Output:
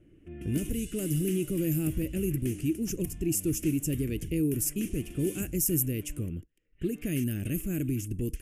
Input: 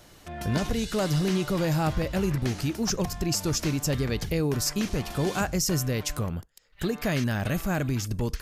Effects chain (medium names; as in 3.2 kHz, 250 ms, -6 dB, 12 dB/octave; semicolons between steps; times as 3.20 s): level-controlled noise filter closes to 1.5 kHz, open at -21.5 dBFS; FFT filter 220 Hz 0 dB, 320 Hz +8 dB, 890 Hz -28 dB, 2.8 kHz 0 dB, 4.1 kHz -21 dB, 10 kHz +14 dB; trim -4 dB